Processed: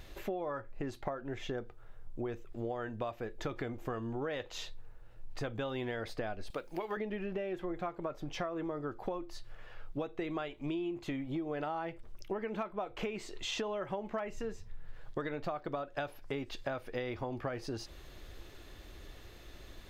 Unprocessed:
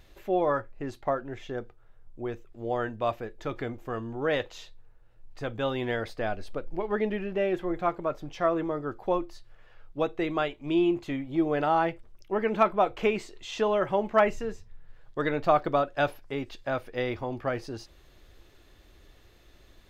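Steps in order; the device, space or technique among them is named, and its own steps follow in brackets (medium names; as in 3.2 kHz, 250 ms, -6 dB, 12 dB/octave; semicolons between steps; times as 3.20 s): 6.50–6.97 s: tilt EQ +3.5 dB/octave; serial compression, leveller first (compression 2.5:1, threshold -28 dBFS, peak gain reduction 8.5 dB; compression 6:1, threshold -40 dBFS, peak gain reduction 16 dB); trim +5 dB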